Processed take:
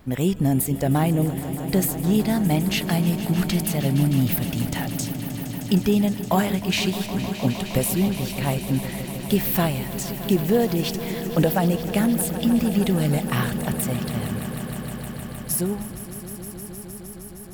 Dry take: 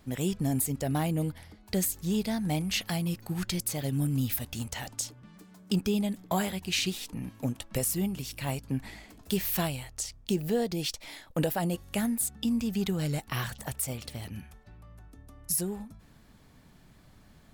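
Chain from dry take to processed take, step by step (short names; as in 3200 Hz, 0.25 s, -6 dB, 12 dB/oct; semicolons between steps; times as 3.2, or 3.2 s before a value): bell 6600 Hz -7.5 dB 2 oct; swelling echo 0.155 s, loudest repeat 5, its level -15 dB; gain +8.5 dB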